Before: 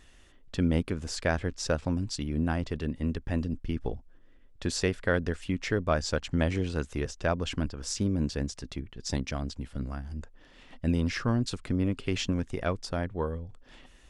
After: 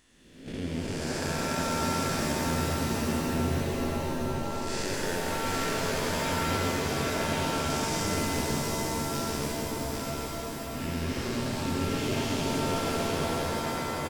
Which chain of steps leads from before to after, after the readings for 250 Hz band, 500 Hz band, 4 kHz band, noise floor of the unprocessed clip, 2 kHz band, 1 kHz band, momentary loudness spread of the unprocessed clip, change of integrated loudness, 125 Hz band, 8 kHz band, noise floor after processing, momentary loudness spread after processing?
0.0 dB, +2.0 dB, +5.0 dB, −56 dBFS, +3.0 dB, +8.0 dB, 9 LU, +1.5 dB, −1.5 dB, +6.5 dB, −37 dBFS, 5 LU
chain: spectrum smeared in time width 492 ms
noise gate −37 dBFS, range −10 dB
spectral tilt +2 dB per octave
downward compressor, threshold −38 dBFS, peak gain reduction 7.5 dB
on a send: single-tap delay 801 ms −3.5 dB
on the sum: reverb with rising layers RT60 3.6 s, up +7 semitones, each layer −2 dB, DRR −1 dB
level +5.5 dB

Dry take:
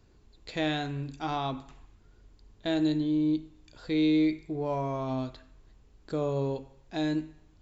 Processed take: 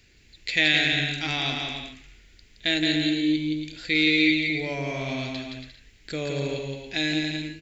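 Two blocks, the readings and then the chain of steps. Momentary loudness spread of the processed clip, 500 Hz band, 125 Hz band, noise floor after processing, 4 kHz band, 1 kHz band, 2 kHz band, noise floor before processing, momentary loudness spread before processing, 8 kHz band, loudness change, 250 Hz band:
15 LU, +0.5 dB, +2.5 dB, −56 dBFS, +16.0 dB, −2.0 dB, +17.5 dB, −60 dBFS, 13 LU, can't be measured, +6.0 dB, +2.0 dB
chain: high shelf with overshoot 1,500 Hz +11.5 dB, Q 3
bouncing-ball delay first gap 170 ms, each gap 0.65×, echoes 5

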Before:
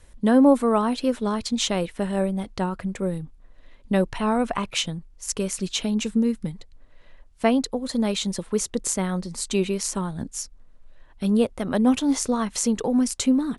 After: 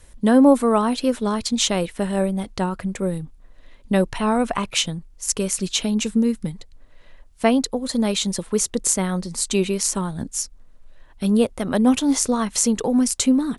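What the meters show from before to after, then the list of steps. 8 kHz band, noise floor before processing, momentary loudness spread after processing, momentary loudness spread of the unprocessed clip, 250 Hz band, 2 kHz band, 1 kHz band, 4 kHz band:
+6.0 dB, −51 dBFS, 9 LU, 9 LU, +2.5 dB, +3.0 dB, +2.5 dB, +4.0 dB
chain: high-shelf EQ 6,000 Hz +6 dB
level +2.5 dB

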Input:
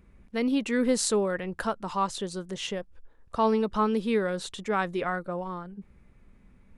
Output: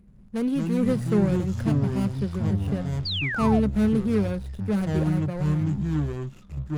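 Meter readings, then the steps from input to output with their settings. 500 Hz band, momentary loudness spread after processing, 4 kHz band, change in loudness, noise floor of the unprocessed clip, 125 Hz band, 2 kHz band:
−1.0 dB, 7 LU, +2.0 dB, +4.0 dB, −58 dBFS, +17.5 dB, +0.5 dB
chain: running median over 41 samples
thirty-one-band graphic EQ 200 Hz +11 dB, 315 Hz −3 dB, 10,000 Hz +11 dB
delay with pitch and tempo change per echo 81 ms, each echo −6 semitones, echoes 3
sound drawn into the spectrogram fall, 0:03.05–0:03.60, 600–4,900 Hz −29 dBFS

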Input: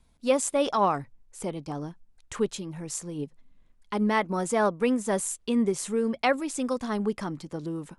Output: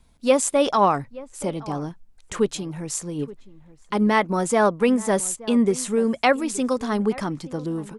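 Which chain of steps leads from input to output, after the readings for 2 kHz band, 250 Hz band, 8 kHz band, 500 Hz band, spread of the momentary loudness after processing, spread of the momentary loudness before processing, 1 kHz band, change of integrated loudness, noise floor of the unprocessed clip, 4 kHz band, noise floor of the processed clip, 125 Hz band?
+5.5 dB, +5.5 dB, +5.5 dB, +5.5 dB, 12 LU, 12 LU, +5.5 dB, +5.5 dB, −62 dBFS, +5.5 dB, −53 dBFS, +5.5 dB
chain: slap from a distant wall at 150 metres, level −19 dB
level +5.5 dB

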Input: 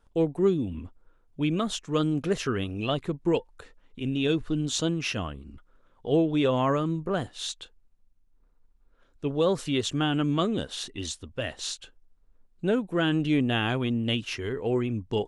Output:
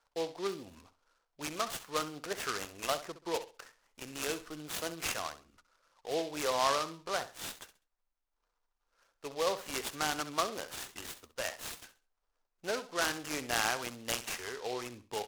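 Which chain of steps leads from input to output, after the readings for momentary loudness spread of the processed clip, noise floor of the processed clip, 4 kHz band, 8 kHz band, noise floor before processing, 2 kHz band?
14 LU, −83 dBFS, −5.5 dB, 0.0 dB, −64 dBFS, −2.5 dB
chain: three-way crossover with the lows and the highs turned down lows −24 dB, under 590 Hz, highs −13 dB, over 3,000 Hz
on a send: repeating echo 66 ms, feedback 26%, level −13 dB
on the sum: short delay modulated by noise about 3,500 Hz, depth 0.071 ms

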